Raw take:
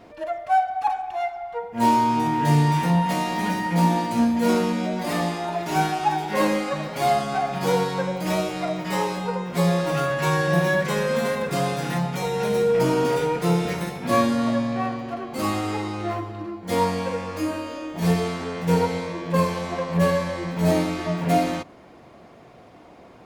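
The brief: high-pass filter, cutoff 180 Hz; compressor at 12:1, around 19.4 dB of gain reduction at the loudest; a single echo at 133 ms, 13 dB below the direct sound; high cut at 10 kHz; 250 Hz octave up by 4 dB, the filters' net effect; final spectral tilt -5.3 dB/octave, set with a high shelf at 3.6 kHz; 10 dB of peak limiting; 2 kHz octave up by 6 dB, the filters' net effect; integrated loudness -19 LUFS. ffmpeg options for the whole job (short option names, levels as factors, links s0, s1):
-af "highpass=180,lowpass=10000,equalizer=f=250:t=o:g=7.5,equalizer=f=2000:t=o:g=6,highshelf=f=3600:g=5,acompressor=threshold=0.0282:ratio=12,alimiter=level_in=2.37:limit=0.0631:level=0:latency=1,volume=0.422,aecho=1:1:133:0.224,volume=10"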